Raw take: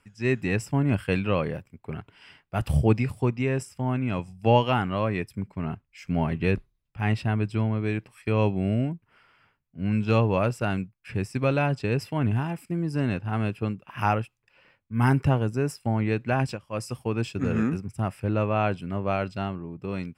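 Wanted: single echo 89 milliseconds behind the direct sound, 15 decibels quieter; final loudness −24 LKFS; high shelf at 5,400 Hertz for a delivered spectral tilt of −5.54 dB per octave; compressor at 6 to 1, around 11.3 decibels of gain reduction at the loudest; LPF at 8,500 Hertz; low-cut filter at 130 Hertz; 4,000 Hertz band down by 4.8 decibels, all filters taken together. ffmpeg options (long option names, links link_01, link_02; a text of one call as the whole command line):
ffmpeg -i in.wav -af "highpass=130,lowpass=8500,equalizer=frequency=4000:width_type=o:gain=-9,highshelf=frequency=5400:gain=3.5,acompressor=threshold=-27dB:ratio=6,aecho=1:1:89:0.178,volume=10dB" out.wav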